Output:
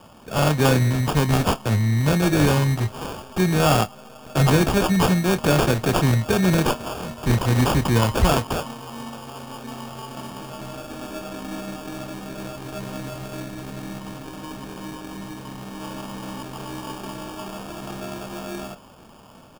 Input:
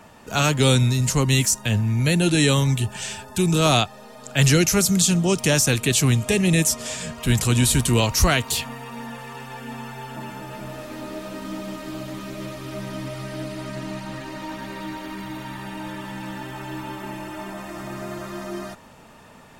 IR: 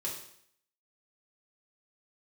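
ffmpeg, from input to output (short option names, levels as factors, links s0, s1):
-filter_complex "[0:a]asettb=1/sr,asplit=3[s0][s1][s2];[s0]atrim=end=13.404[s3];[s1]atrim=start=13.4:end=15.82,asetpts=PTS-STARTPTS,afade=t=in:d=0.004:c=qsin,afade=t=out:st=2.416:d=0.004:c=qsin,equalizer=f=720:t=o:w=0.88:g=-8.5[s4];[s2]atrim=start=15.816[s5];[s3][s4]acrossfade=d=0.004:c1=hsin:c2=qsin[s6];[s6][s5]acrossfade=d=0.004:c1=qsin:c2=hsin,acrusher=samples=22:mix=1:aa=0.000001,asplit=2[s7][s8];[s8]adelay=27,volume=0.224[s9];[s7][s9]amix=inputs=2:normalize=0"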